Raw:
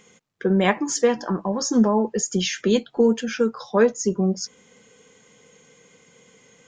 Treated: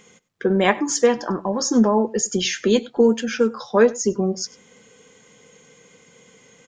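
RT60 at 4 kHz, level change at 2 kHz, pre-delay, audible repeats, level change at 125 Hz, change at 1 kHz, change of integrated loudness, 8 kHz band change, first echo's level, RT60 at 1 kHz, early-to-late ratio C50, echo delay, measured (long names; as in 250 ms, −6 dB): no reverb audible, +2.5 dB, no reverb audible, 1, −1.5 dB, +2.5 dB, +2.0 dB, +2.5 dB, −21.5 dB, no reverb audible, no reverb audible, 98 ms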